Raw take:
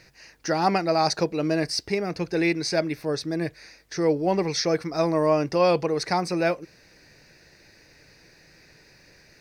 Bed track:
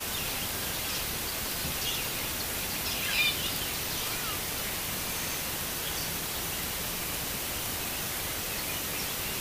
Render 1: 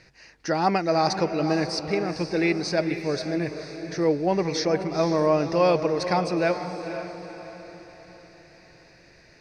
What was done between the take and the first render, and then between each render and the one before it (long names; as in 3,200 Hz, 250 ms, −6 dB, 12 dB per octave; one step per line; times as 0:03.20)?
high-frequency loss of the air 61 metres
feedback delay with all-pass diffusion 486 ms, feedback 46%, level −9 dB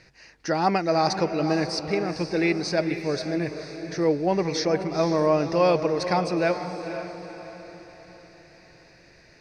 no processing that can be heard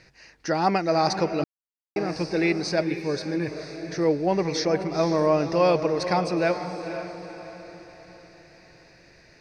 0:01.44–0:01.96: silence
0:02.83–0:03.48: notch comb filter 670 Hz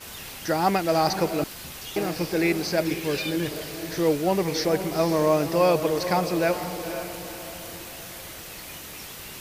mix in bed track −6.5 dB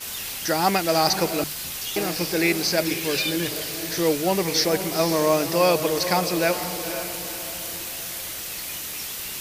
high-shelf EQ 2,300 Hz +9.5 dB
mains-hum notches 50/100/150 Hz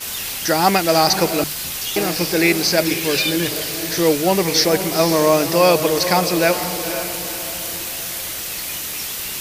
level +5.5 dB
brickwall limiter −2 dBFS, peak gain reduction 2 dB